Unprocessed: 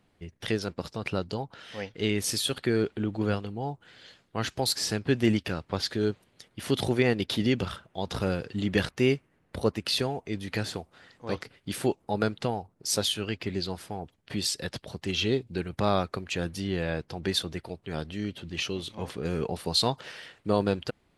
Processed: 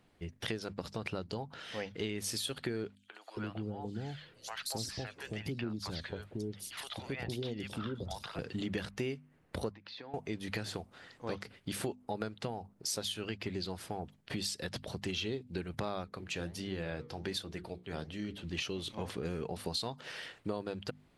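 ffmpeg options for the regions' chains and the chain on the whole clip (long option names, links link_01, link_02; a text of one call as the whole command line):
ffmpeg -i in.wav -filter_complex "[0:a]asettb=1/sr,asplit=3[link_01][link_02][link_03];[link_01]atrim=end=2.954[link_04];[link_02]atrim=start=2.95:end=8.39,asetpts=PTS-STARTPTS,afade=type=in:duration=0.004:curve=qsin,afade=type=out:start_time=5.436:duration=0.004:curve=qsin,acompressor=threshold=-36dB:ratio=2:attack=3.2:release=140:knee=1:detection=peak,acrossover=split=660|4200[link_05][link_06][link_07];[link_06]adelay=130[link_08];[link_05]adelay=400[link_09];[link_09][link_08][link_07]amix=inputs=3:normalize=0,atrim=end_sample=239904,aphaser=in_gain=1:out_gain=1:delay=2.2:decay=0.32:speed=1.1:type=triangular[link_10];[link_03]atrim=start=8.386[link_11];[link_04][link_10]acrossfade=duration=0.004:curve1=hsin:curve2=qsin[link_12];[link_12][link_11]acrossfade=duration=0.004:curve1=qsin:curve2=hsin,asettb=1/sr,asplit=3[link_13][link_14][link_15];[link_13]atrim=end=9.734[link_16];[link_14]atrim=start=9.73:end=10.14,asetpts=PTS-STARTPTS,afade=type=in:duration=0.004:curve=qsin,afade=type=out:start_time=0.406:duration=0.004:curve=qsin,acompressor=threshold=-36dB:ratio=10:attack=3.2:release=140:knee=1:detection=peak,highpass=300,equalizer=frequency=400:width_type=q:width=4:gain=-9,equalizer=frequency=650:width_type=q:width=4:gain=-7,equalizer=frequency=1300:width_type=q:width=4:gain=-5,equalizer=frequency=2900:width_type=q:width=4:gain=-10,lowpass=frequency=3800:width=0.5412,lowpass=frequency=3800:width=1.3066[link_17];[link_15]atrim=start=10.136[link_18];[link_16][link_17]acrossfade=duration=0.004:curve1=hsin:curve2=qsin[link_19];[link_19][link_18]acrossfade=duration=0.004:curve1=qsin:curve2=hsin,asettb=1/sr,asplit=3[link_20][link_21][link_22];[link_20]atrim=end=16.044[link_23];[link_21]atrim=start=16.04:end=18.44,asetpts=PTS-STARTPTS,afade=type=in:duration=0.004:curve=qsin,afade=type=out:start_time=2.396:duration=0.004:curve=qsin,highpass=42,bandreject=frequency=60:width_type=h:width=6,bandreject=frequency=120:width_type=h:width=6,bandreject=frequency=180:width_type=h:width=6,bandreject=frequency=240:width_type=h:width=6,bandreject=frequency=300:width_type=h:width=6,bandreject=frequency=360:width_type=h:width=6,bandreject=frequency=420:width_type=h:width=6,bandreject=frequency=480:width_type=h:width=6,flanger=delay=3.5:depth=9:regen=-76:speed=1.4:shape=sinusoidal[link_24];[link_22]atrim=start=18.436[link_25];[link_23][link_24]acrossfade=duration=0.004:curve1=hsin:curve2=qsin[link_26];[link_26][link_25]acrossfade=duration=0.004:curve1=qsin:curve2=hsin,bandreject=frequency=50:width_type=h:width=6,bandreject=frequency=100:width_type=h:width=6,bandreject=frequency=150:width_type=h:width=6,bandreject=frequency=200:width_type=h:width=6,bandreject=frequency=250:width_type=h:width=6,acompressor=threshold=-34dB:ratio=6" out.wav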